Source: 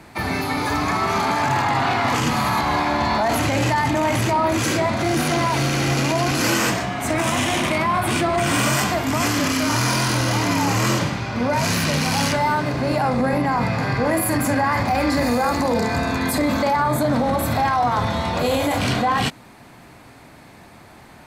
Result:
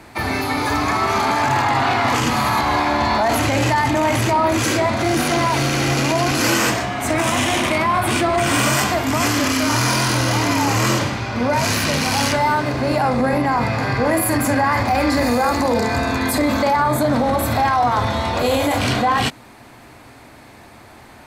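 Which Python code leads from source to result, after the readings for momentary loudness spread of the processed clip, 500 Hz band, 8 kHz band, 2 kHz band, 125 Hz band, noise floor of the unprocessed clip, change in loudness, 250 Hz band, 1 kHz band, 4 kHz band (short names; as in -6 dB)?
3 LU, +2.5 dB, +2.5 dB, +2.5 dB, +1.0 dB, -45 dBFS, +2.0 dB, +1.5 dB, +2.5 dB, +2.5 dB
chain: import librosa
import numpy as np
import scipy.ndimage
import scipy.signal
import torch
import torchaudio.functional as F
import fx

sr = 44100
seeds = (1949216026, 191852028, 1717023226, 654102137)

y = fx.peak_eq(x, sr, hz=170.0, db=-12.0, octaves=0.26)
y = y * librosa.db_to_amplitude(2.5)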